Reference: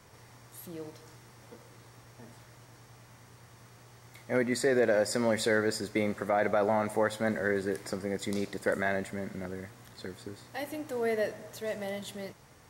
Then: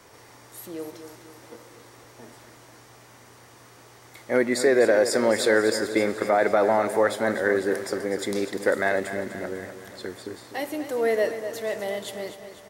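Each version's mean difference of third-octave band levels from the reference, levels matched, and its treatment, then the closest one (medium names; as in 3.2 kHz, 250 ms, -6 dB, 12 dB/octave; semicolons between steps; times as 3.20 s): 2.5 dB: resonant low shelf 230 Hz -7 dB, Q 1.5; on a send: feedback delay 249 ms, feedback 55%, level -11 dB; on the sum: trim +6 dB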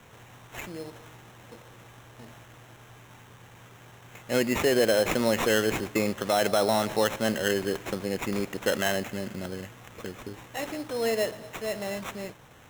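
4.0 dB: treble shelf 6.8 kHz +9 dB; sample-rate reducer 4.7 kHz, jitter 0%; trim +3 dB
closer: first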